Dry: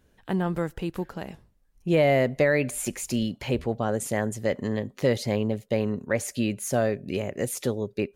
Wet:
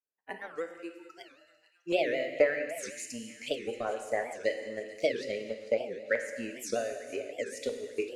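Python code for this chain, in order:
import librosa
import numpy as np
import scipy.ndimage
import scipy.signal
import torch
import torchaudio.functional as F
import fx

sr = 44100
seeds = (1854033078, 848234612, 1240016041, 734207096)

p1 = scipy.signal.sosfilt(scipy.signal.butter(2, 6800.0, 'lowpass', fs=sr, output='sos'), x)
p2 = fx.noise_reduce_blind(p1, sr, reduce_db=29)
p3 = scipy.signal.sosfilt(scipy.signal.butter(2, 470.0, 'highpass', fs=sr, output='sos'), p2)
p4 = fx.transient(p3, sr, attack_db=9, sustain_db=-6)
p5 = fx.filter_lfo_notch(p4, sr, shape='square', hz=1.3, low_hz=930.0, high_hz=3600.0, q=0.82)
p6 = p5 + fx.echo_wet_highpass(p5, sr, ms=446, feedback_pct=68, hz=2000.0, wet_db=-16, dry=0)
p7 = fx.rev_gated(p6, sr, seeds[0], gate_ms=490, shape='falling', drr_db=4.5)
p8 = fx.record_warp(p7, sr, rpm=78.0, depth_cents=250.0)
y = p8 * 10.0 ** (-5.5 / 20.0)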